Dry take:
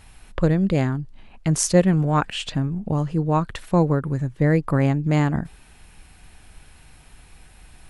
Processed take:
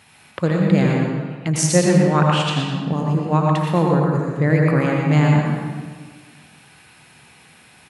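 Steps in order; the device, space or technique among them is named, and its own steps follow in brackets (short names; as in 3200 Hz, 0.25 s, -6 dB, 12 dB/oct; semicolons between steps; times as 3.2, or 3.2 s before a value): PA in a hall (HPF 110 Hz 24 dB/oct; bell 2500 Hz +4.5 dB 2.3 oct; echo 0.119 s -8 dB; reverb RT60 1.6 s, pre-delay 76 ms, DRR -0.5 dB); gain -1 dB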